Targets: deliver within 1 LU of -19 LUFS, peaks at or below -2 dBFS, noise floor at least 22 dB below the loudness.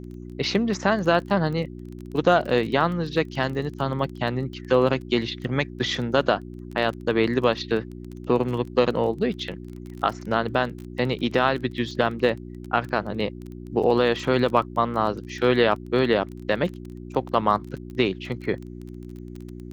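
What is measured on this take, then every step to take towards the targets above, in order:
ticks 21/s; hum 60 Hz; harmonics up to 360 Hz; hum level -36 dBFS; loudness -24.5 LUFS; peak -3.5 dBFS; loudness target -19.0 LUFS
-> de-click; de-hum 60 Hz, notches 6; gain +5.5 dB; limiter -2 dBFS

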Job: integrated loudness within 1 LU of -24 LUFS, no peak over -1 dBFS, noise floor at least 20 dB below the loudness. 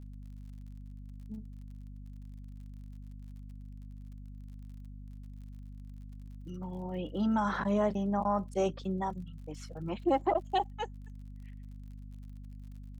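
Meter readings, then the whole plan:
ticks 49/s; hum 50 Hz; harmonics up to 250 Hz; hum level -43 dBFS; loudness -33.5 LUFS; peak -17.5 dBFS; loudness target -24.0 LUFS
-> de-click; de-hum 50 Hz, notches 5; gain +9.5 dB

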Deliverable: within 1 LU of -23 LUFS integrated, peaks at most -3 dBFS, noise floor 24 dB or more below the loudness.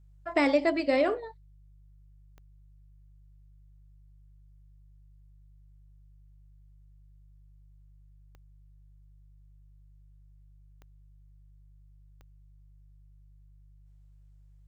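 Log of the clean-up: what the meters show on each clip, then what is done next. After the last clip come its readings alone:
clicks 4; hum 50 Hz; harmonics up to 150 Hz; hum level -53 dBFS; loudness -27.0 LUFS; peak -12.5 dBFS; loudness target -23.0 LUFS
-> de-click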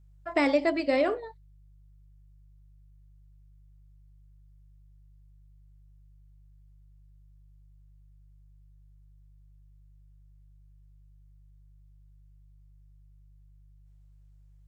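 clicks 0; hum 50 Hz; harmonics up to 150 Hz; hum level -53 dBFS
-> de-hum 50 Hz, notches 3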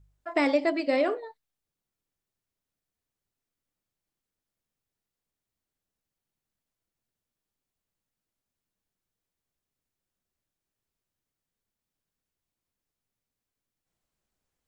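hum none; loudness -27.0 LUFS; peak -12.5 dBFS; loudness target -23.0 LUFS
-> gain +4 dB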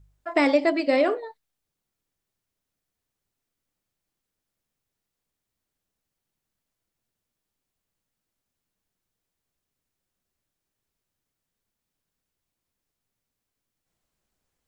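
loudness -23.0 LUFS; peak -8.5 dBFS; noise floor -85 dBFS

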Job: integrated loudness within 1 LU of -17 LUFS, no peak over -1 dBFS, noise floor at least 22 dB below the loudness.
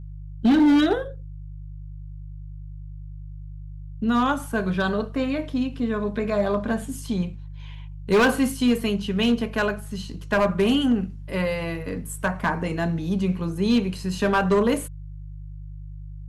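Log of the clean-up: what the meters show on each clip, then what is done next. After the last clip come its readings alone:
clipped 0.9%; flat tops at -13.5 dBFS; hum 50 Hz; harmonics up to 150 Hz; hum level -35 dBFS; loudness -23.5 LUFS; peak -13.5 dBFS; loudness target -17.0 LUFS
-> clip repair -13.5 dBFS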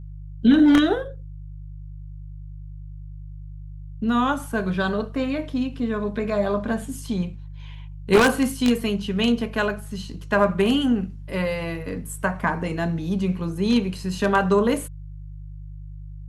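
clipped 0.0%; hum 50 Hz; harmonics up to 150 Hz; hum level -34 dBFS
-> de-hum 50 Hz, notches 3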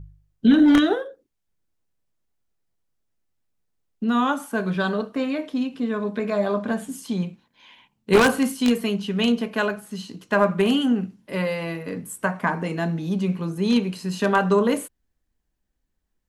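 hum none; loudness -22.5 LUFS; peak -4.0 dBFS; loudness target -17.0 LUFS
-> gain +5.5 dB; limiter -1 dBFS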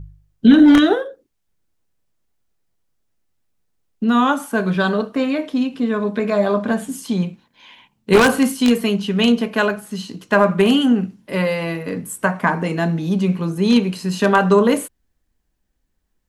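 loudness -17.5 LUFS; peak -1.0 dBFS; noise floor -70 dBFS

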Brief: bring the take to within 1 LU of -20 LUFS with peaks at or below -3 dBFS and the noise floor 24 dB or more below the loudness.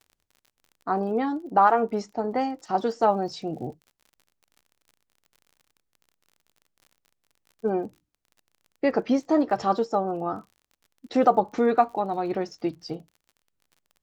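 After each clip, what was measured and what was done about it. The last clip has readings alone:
ticks 41/s; loudness -25.5 LUFS; peak -6.0 dBFS; loudness target -20.0 LUFS
-> de-click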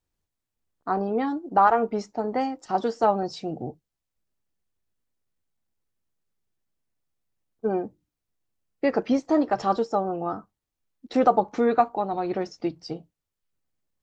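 ticks 0/s; loudness -25.5 LUFS; peak -6.0 dBFS; loudness target -20.0 LUFS
-> gain +5.5 dB; limiter -3 dBFS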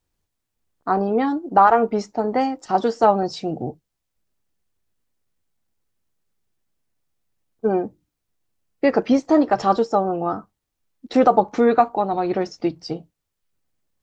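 loudness -20.0 LUFS; peak -3.0 dBFS; noise floor -79 dBFS

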